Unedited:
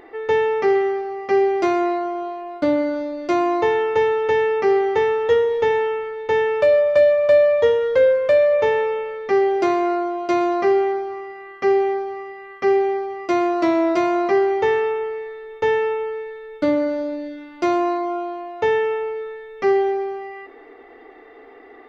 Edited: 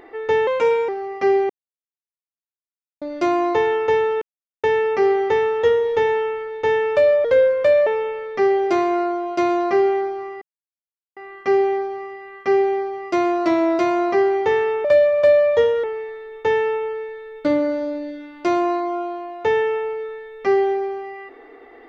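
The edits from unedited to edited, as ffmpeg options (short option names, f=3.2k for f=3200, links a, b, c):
-filter_complex "[0:a]asplit=11[a][b][c][d][e][f][g][h][i][j][k];[a]atrim=end=0.474[l];[b]atrim=start=0.47:end=0.96,asetpts=PTS-STARTPTS,asetrate=52038,aresample=44100[m];[c]atrim=start=0.956:end=1.57,asetpts=PTS-STARTPTS,afade=t=out:st=0.61:d=0.004:c=hsin[n];[d]atrim=start=1.57:end=3.09,asetpts=PTS-STARTPTS,volume=0[o];[e]atrim=start=3.09:end=4.29,asetpts=PTS-STARTPTS,afade=t=in:d=0.004:c=hsin,afade=t=out:st=1.196:d=0.004:c=hsin,apad=pad_dur=0.42[p];[f]atrim=start=4.29:end=6.902,asetpts=PTS-STARTPTS,afade=t=in:d=0.004:c=hsin[q];[g]atrim=start=7.888:end=8.512[r];[h]atrim=start=8.778:end=11.33,asetpts=PTS-STARTPTS,afade=t=out:st=2.548:d=0.004:c=hsin,apad=pad_dur=0.75[s];[i]atrim=start=11.33:end=15.012,asetpts=PTS-STARTPTS,afade=t=in:d=0.004:c=hsin[t];[j]atrim=start=6.898:end=7.892[u];[k]atrim=start=15.008[v];[l][m]acrossfade=d=0.004:c1=hsin:c2=hsin[w];[n][o][p][q]concat=n=4:v=0:a=1[x];[w][x]acrossfade=d=0.004:c1=hsin:c2=hsin[y];[y][r]acrossfade=d=0.004:c1=hsin:c2=hsin[z];[s][t]concat=n=2:v=0:a=1[aa];[z][aa]acrossfade=d=0.004:c1=hsin:c2=hsin[ab];[ab][u]acrossfade=d=0.004:c1=hsin:c2=hsin[ac];[ac][v]acrossfade=d=0.004:c1=hsin:c2=hsin"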